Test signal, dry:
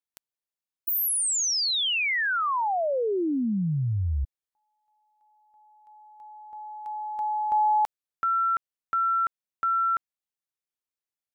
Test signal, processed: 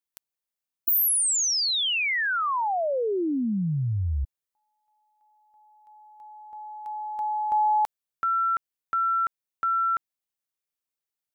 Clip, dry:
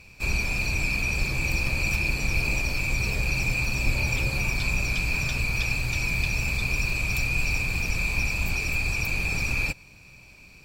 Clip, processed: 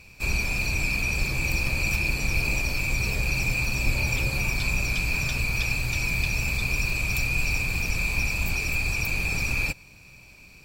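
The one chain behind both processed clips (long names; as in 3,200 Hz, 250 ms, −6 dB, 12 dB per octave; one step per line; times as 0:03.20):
high-shelf EQ 10,000 Hz +5.5 dB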